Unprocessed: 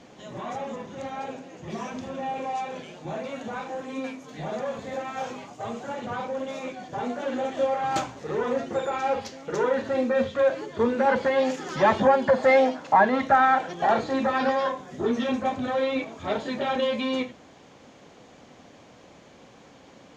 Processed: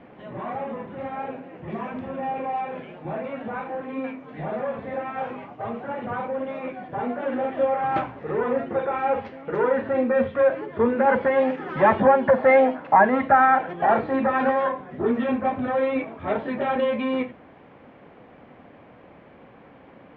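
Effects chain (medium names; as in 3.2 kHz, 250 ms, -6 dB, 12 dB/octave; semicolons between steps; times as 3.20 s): low-pass 2.4 kHz 24 dB/octave; trim +2.5 dB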